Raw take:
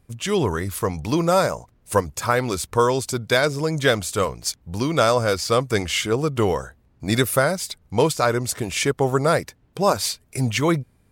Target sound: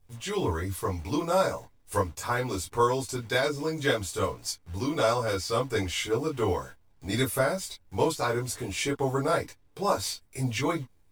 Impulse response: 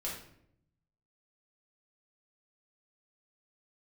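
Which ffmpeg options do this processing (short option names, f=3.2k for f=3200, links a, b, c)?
-filter_complex "[0:a]acrusher=bits=8:dc=4:mix=0:aa=0.000001[a];[1:a]atrim=start_sample=2205,atrim=end_sample=3087,asetrate=74970,aresample=44100[b];[a][b]afir=irnorm=-1:irlink=0,volume=-3.5dB"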